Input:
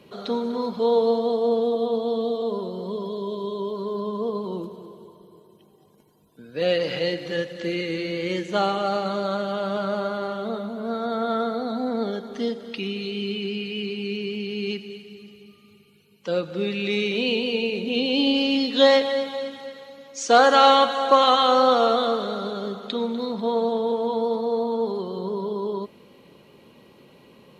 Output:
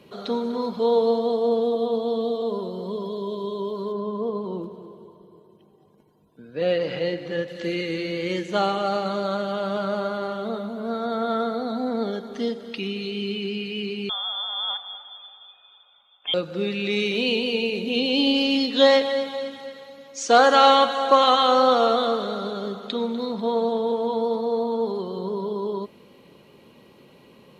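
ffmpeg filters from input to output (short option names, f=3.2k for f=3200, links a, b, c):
-filter_complex "[0:a]asettb=1/sr,asplit=3[a][b][c];[a]atrim=end=3.924[d];[b]atrim=start=3.92:end=7.48,asetpts=PTS-STARTPTS,afade=t=in:d=0.004:c=qsin,afade=t=out:st=3.556:d=0.004:c=qsin,highshelf=f=3.5k:g=-11.5[e];[c]atrim=start=7.476[f];[d][e]acrossfade=d=0.004:c1=hsin:c2=qsin[g];[g][f]acrossfade=d=0.004:c1=qsin:c2=hsin,asettb=1/sr,asplit=3[h][i][j];[h]atrim=end=14.094[k];[i]atrim=start=14.09:end=16.34,asetpts=PTS-STARTPTS,afade=t=in:d=0.004:c=qsin,afade=t=out:st=2.246:d=0.004:c=qsin,lowpass=f=3.1k:t=q:w=0.5098,lowpass=f=3.1k:t=q:w=0.6013,lowpass=f=3.1k:t=q:w=0.9,lowpass=f=3.1k:t=q:w=2.563,afreqshift=-3700[l];[j]atrim=start=16.336[m];[k][l]acrossfade=d=0.004:c1=hsin:c2=qsin[n];[n][m]acrossfade=d=0.004:c1=qsin:c2=hsin,asettb=1/sr,asplit=3[o][p][q];[o]atrim=end=16.964[r];[p]atrim=start=16.96:end=18.66,asetpts=PTS-STARTPTS,afade=t=in:d=0.004:c=qsin,afade=t=out:st=1.696:d=0.004:c=qsin,highshelf=f=5.1k:g=5[s];[q]atrim=start=18.656[t];[r][s]acrossfade=d=0.004:c1=hsin:c2=qsin[u];[u][t]acrossfade=d=0.004:c1=qsin:c2=hsin"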